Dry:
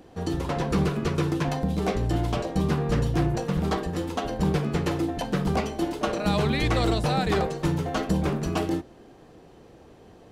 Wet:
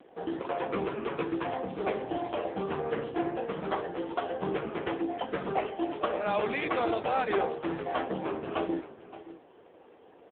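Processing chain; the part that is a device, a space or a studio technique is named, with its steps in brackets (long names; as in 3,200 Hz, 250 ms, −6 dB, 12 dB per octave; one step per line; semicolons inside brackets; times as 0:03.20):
satellite phone (band-pass filter 380–3,300 Hz; single-tap delay 569 ms −15.5 dB; level +1 dB; AMR narrowband 5.9 kbit/s 8,000 Hz)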